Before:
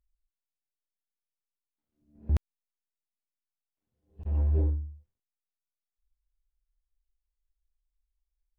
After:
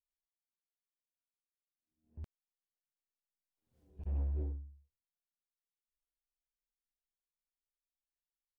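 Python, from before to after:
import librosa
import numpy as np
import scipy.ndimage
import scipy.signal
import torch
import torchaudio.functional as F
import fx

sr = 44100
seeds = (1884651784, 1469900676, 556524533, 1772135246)

y = fx.doppler_pass(x, sr, speed_mps=18, closest_m=1.1, pass_at_s=3.8)
y = fx.doppler_dist(y, sr, depth_ms=0.23)
y = y * 10.0 ** (8.0 / 20.0)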